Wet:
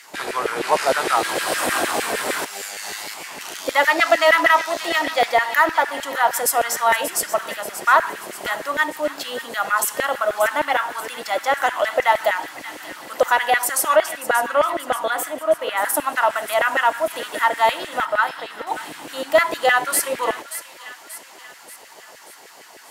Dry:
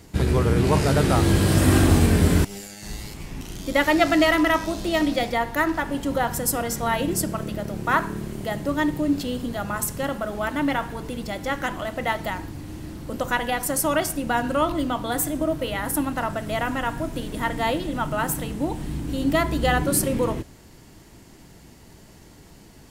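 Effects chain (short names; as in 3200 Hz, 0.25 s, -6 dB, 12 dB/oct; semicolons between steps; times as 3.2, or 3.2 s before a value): 13.96–15.82 high shelf 3300 Hz -9.5 dB; in parallel at +0.5 dB: compressor, threshold -27 dBFS, peak gain reduction 14 dB; on the sum: added harmonics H 5 -23 dB, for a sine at -2.5 dBFS; LFO high-pass saw down 6.5 Hz 490–2000 Hz; 18.05–18.67 rippled Chebyshev low-pass 5400 Hz, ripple 6 dB; on a send: thin delay 0.583 s, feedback 52%, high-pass 1800 Hz, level -11 dB; on the sum: gain -1.5 dB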